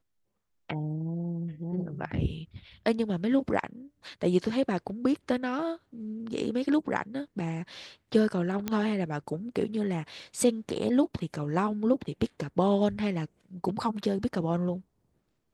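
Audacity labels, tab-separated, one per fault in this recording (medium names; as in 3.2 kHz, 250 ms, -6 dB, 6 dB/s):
8.680000	8.680000	pop -15 dBFS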